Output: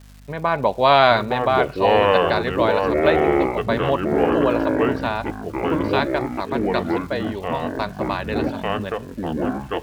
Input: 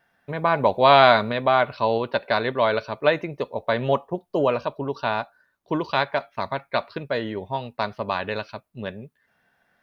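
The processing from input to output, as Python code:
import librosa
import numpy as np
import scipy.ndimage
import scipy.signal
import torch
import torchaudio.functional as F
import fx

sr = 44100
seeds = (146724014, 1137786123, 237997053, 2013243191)

y = fx.dmg_crackle(x, sr, seeds[0], per_s=400.0, level_db=-39.0)
y = fx.echo_pitch(y, sr, ms=717, semitones=-5, count=3, db_per_echo=-3.0)
y = fx.add_hum(y, sr, base_hz=50, snr_db=25)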